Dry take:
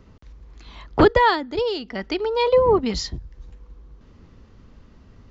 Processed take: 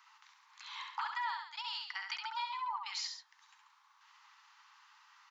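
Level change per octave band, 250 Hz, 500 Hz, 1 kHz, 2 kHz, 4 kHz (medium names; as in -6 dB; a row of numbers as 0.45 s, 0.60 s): under -40 dB, under -40 dB, -15.5 dB, -14.0 dB, -10.0 dB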